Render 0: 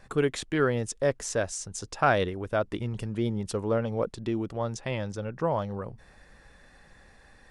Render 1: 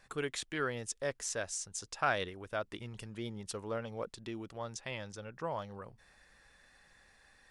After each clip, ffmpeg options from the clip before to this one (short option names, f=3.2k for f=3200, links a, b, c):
-af "tiltshelf=f=930:g=-5.5,volume=-8.5dB"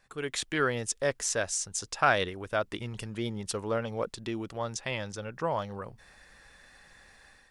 -af "dynaudnorm=f=110:g=5:m=11dB,volume=-3.5dB"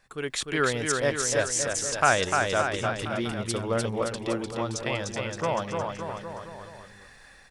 -af "aecho=1:1:300|570|813|1032|1229:0.631|0.398|0.251|0.158|0.1,volume=2.5dB"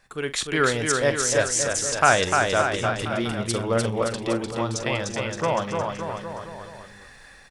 -filter_complex "[0:a]asplit=2[a][b];[b]adelay=44,volume=-13.5dB[c];[a][c]amix=inputs=2:normalize=0,volume=3.5dB"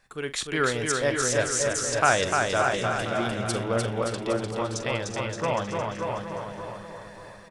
-filter_complex "[0:a]asplit=2[a][b];[b]adelay=586,lowpass=f=3k:p=1,volume=-6dB,asplit=2[c][d];[d]adelay=586,lowpass=f=3k:p=1,volume=0.36,asplit=2[e][f];[f]adelay=586,lowpass=f=3k:p=1,volume=0.36,asplit=2[g][h];[h]adelay=586,lowpass=f=3k:p=1,volume=0.36[i];[a][c][e][g][i]amix=inputs=5:normalize=0,volume=-3.5dB"